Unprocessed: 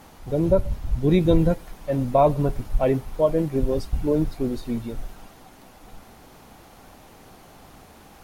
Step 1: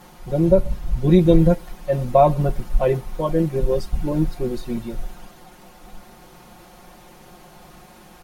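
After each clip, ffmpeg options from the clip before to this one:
ffmpeg -i in.wav -af "aecho=1:1:5.6:0.87" out.wav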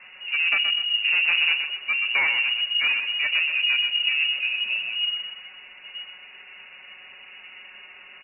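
ffmpeg -i in.wav -af "asoftclip=type=tanh:threshold=-19.5dB,aecho=1:1:125|250|375|500:0.447|0.152|0.0516|0.0176,lowpass=frequency=2500:width_type=q:width=0.5098,lowpass=frequency=2500:width_type=q:width=0.6013,lowpass=frequency=2500:width_type=q:width=0.9,lowpass=frequency=2500:width_type=q:width=2.563,afreqshift=-2900" out.wav

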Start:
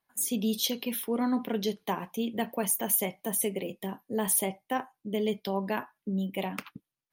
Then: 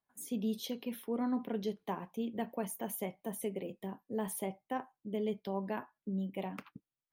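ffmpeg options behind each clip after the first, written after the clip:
ffmpeg -i in.wav -af "highshelf=frequency=2200:gain=-11,volume=-5.5dB" out.wav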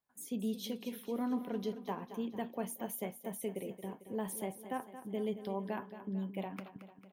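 ffmpeg -i in.wav -af "aecho=1:1:224|448|672|896|1120|1344:0.251|0.136|0.0732|0.0396|0.0214|0.0115,volume=-1.5dB" out.wav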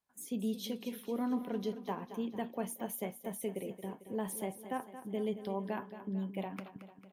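ffmpeg -i in.wav -af "volume=1dB" -ar 32000 -c:a aac -b:a 96k out.aac

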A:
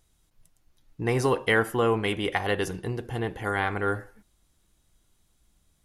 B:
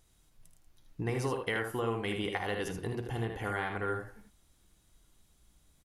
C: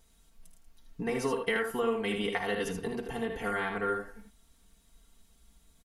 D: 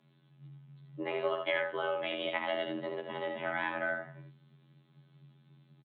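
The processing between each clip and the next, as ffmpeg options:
ffmpeg -i in.wav -af "acompressor=threshold=-34dB:ratio=3,aecho=1:1:53|78:0.266|0.501" out.wav
ffmpeg -i in.wav -af "aecho=1:1:4.4:0.92" out.wav
ffmpeg -i in.wav -af "aresample=8000,aresample=44100,afftfilt=real='hypot(re,im)*cos(PI*b)':imag='0':win_size=2048:overlap=0.75,afreqshift=140,volume=2dB" out.wav

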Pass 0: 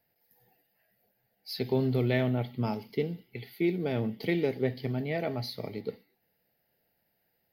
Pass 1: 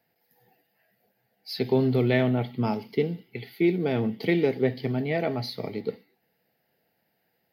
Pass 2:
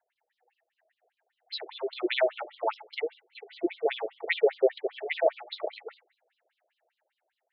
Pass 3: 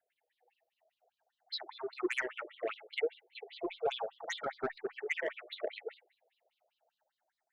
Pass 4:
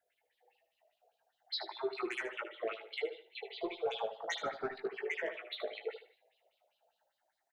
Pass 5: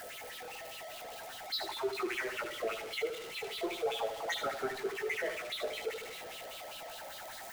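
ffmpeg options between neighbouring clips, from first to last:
ffmpeg -i in.wav -af "highpass=120,highshelf=frequency=6500:gain=-7.5,bandreject=frequency=580:width=14,volume=5.5dB" out.wav
ffmpeg -i in.wav -af "dynaudnorm=framelen=340:gausssize=9:maxgain=9dB,superequalizer=7b=0.562:14b=0.316,afftfilt=real='re*between(b*sr/1024,480*pow(4300/480,0.5+0.5*sin(2*PI*5*pts/sr))/1.41,480*pow(4300/480,0.5+0.5*sin(2*PI*5*pts/sr))*1.41)':imag='im*between(b*sr/1024,480*pow(4300/480,0.5+0.5*sin(2*PI*5*pts/sr))/1.41,480*pow(4300/480,0.5+0.5*sin(2*PI*5*pts/sr))*1.41)':win_size=1024:overlap=0.75" out.wav
ffmpeg -i in.wav -filter_complex "[0:a]asoftclip=type=tanh:threshold=-21dB,asplit=2[link_01][link_02];[link_02]afreqshift=0.35[link_03];[link_01][link_03]amix=inputs=2:normalize=1" out.wav
ffmpeg -i in.wav -filter_complex "[0:a]alimiter=level_in=5.5dB:limit=-24dB:level=0:latency=1:release=240,volume=-5.5dB,asplit=2[link_01][link_02];[link_02]adelay=18,volume=-6dB[link_03];[link_01][link_03]amix=inputs=2:normalize=0,asplit=2[link_04][link_05];[link_05]aecho=0:1:76|152|228:0.266|0.0718|0.0194[link_06];[link_04][link_06]amix=inputs=2:normalize=0,volume=2dB" out.wav
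ffmpeg -i in.wav -af "aeval=exprs='val(0)+0.5*0.0106*sgn(val(0))':channel_layout=same,aeval=exprs='val(0)+0.00126*sin(2*PI*1300*n/s)':channel_layout=same" out.wav

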